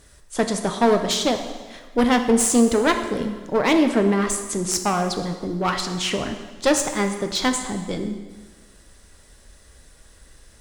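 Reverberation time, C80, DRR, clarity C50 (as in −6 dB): 1.4 s, 9.5 dB, 5.5 dB, 8.0 dB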